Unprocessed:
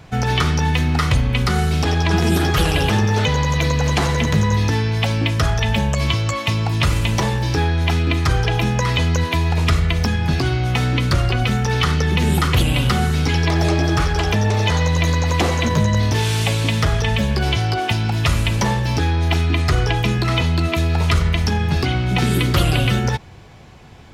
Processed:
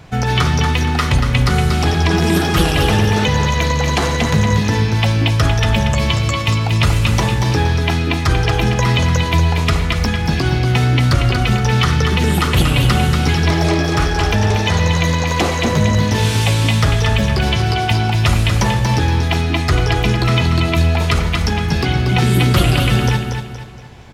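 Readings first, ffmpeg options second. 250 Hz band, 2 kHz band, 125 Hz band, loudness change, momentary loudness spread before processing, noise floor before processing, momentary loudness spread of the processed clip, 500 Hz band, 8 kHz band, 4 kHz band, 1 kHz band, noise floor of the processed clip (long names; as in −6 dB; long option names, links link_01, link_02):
+3.0 dB, +3.0 dB, +3.0 dB, +3.0 dB, 2 LU, −24 dBFS, 3 LU, +3.0 dB, +3.0 dB, +3.0 dB, +3.0 dB, −19 dBFS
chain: -af "aecho=1:1:235|470|705|940:0.501|0.185|0.0686|0.0254,volume=2dB"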